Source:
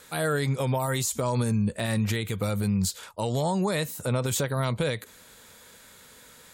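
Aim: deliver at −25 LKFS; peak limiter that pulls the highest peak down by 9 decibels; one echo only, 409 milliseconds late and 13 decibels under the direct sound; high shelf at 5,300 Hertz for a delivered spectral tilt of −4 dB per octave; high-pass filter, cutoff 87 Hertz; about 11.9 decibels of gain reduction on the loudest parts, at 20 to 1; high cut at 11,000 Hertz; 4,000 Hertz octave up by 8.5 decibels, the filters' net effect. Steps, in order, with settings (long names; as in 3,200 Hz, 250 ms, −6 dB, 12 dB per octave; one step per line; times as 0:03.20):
high-pass filter 87 Hz
low-pass filter 11,000 Hz
parametric band 4,000 Hz +8 dB
high-shelf EQ 5,300 Hz +4.5 dB
downward compressor 20 to 1, threshold −33 dBFS
brickwall limiter −27.5 dBFS
single-tap delay 409 ms −13 dB
level +14 dB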